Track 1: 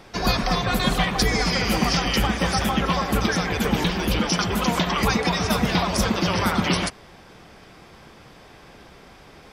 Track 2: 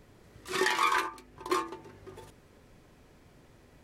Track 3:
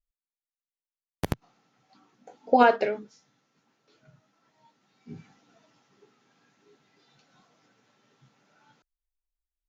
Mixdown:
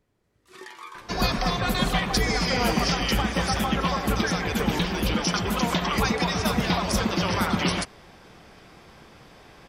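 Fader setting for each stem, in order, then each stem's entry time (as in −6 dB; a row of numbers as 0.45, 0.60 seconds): −2.5, −15.0, −10.5 decibels; 0.95, 0.00, 0.00 seconds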